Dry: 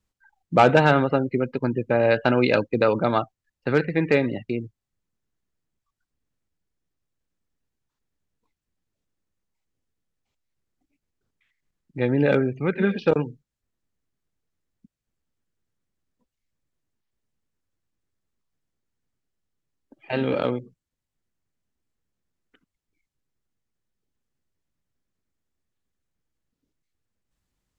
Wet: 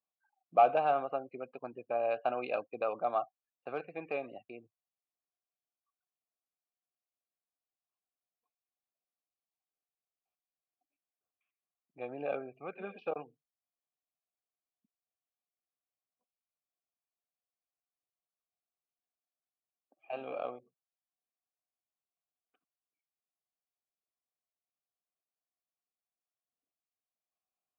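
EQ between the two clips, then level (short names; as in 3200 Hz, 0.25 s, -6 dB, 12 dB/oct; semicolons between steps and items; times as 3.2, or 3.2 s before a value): vowel filter a; high shelf 4800 Hz -5.5 dB; -2.0 dB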